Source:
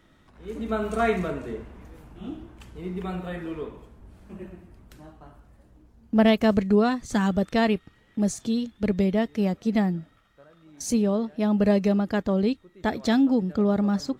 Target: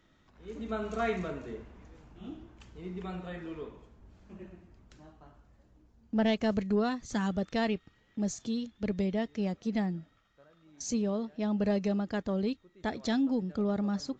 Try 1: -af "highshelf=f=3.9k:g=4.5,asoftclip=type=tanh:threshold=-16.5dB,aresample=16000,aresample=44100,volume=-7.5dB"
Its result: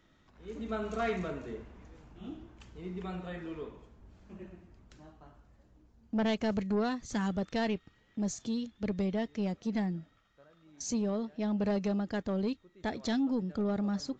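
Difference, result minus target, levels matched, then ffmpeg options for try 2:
soft clip: distortion +9 dB
-af "highshelf=f=3.9k:g=4.5,asoftclip=type=tanh:threshold=-10dB,aresample=16000,aresample=44100,volume=-7.5dB"

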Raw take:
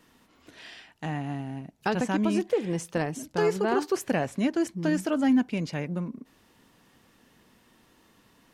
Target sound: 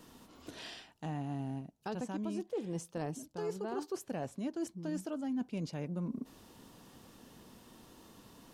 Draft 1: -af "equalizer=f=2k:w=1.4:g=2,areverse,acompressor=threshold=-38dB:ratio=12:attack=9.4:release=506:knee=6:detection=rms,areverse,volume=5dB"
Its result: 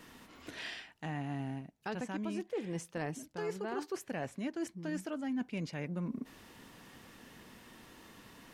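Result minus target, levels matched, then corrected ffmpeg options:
2000 Hz band +7.5 dB
-af "equalizer=f=2k:w=1.4:g=-9,areverse,acompressor=threshold=-38dB:ratio=12:attack=9.4:release=506:knee=6:detection=rms,areverse,volume=5dB"

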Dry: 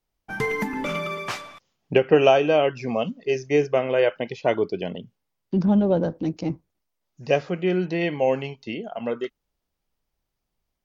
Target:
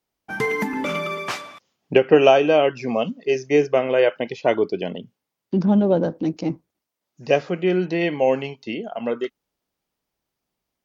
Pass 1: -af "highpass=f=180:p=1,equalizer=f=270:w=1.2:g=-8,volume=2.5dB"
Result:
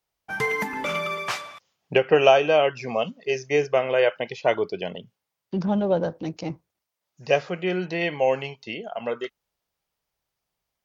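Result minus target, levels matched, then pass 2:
250 Hz band -4.5 dB
-af "highpass=f=180:p=1,equalizer=f=270:w=1.2:g=2.5,volume=2.5dB"

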